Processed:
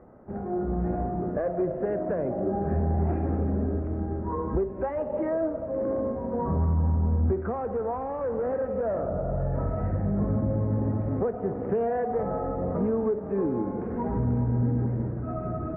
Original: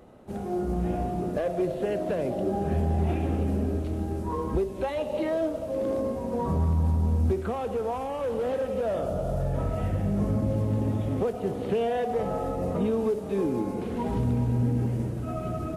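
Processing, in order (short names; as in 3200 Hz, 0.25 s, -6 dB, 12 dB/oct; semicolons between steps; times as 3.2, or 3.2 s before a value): steep low-pass 1800 Hz 36 dB/oct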